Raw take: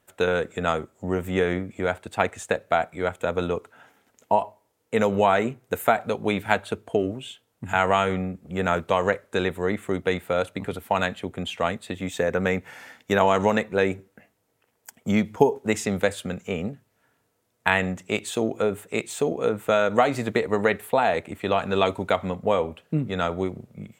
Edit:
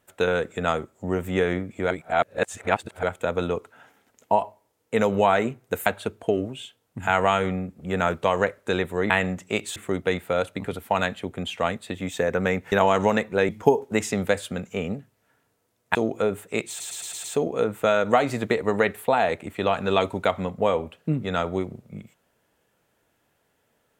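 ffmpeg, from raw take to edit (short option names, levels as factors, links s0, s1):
-filter_complex "[0:a]asplit=14[s0][s1][s2][s3][s4][s5][s6][s7][s8][s9][s10][s11][s12][s13];[s0]atrim=end=1.912[s14];[s1]atrim=start=1.908:end=3.032,asetpts=PTS-STARTPTS,areverse[s15];[s2]atrim=start=3.028:end=5.862[s16];[s3]atrim=start=6.518:end=9.762[s17];[s4]atrim=start=17.688:end=18.352[s18];[s5]atrim=start=9.758:end=12.722[s19];[s6]atrim=start=13.118:end=13.892[s20];[s7]atrim=start=15.228:end=17.692[s21];[s8]atrim=start=18.348:end=19.202[s22];[s9]atrim=start=19.088:end=19.202[s23];[s10]atrim=start=19.088:end=19.202[s24];[s11]atrim=start=19.088:end=19.202[s25];[s12]atrim=start=19.088:end=19.202[s26];[s13]atrim=start=19.088[s27];[s14][s15]acrossfade=d=0.004:c1=hsin:c2=hsin[s28];[s28][s16]acrossfade=d=0.004:c1=hsin:c2=hsin[s29];[s29][s17]acrossfade=d=0.004:c1=hsin:c2=hsin[s30];[s30][s18]acrossfade=d=0.004:c1=hsin:c2=hsin[s31];[s31][s19]acrossfade=d=0.004:c1=hsin:c2=hsin[s32];[s32][s20]acrossfade=d=0.004:c1=hsin:c2=hsin[s33];[s33][s21]acrossfade=d=0.004:c1=hsin:c2=hsin[s34];[s34][s22]acrossfade=d=0.004:c1=hsin:c2=hsin[s35];[s35][s23]acrossfade=d=0.004:c1=hsin:c2=hsin[s36];[s36][s24]acrossfade=d=0.004:c1=hsin:c2=hsin[s37];[s37][s25]acrossfade=d=0.004:c1=hsin:c2=hsin[s38];[s38][s26]acrossfade=d=0.004:c1=hsin:c2=hsin[s39];[s39][s27]acrossfade=d=0.004:c1=hsin:c2=hsin"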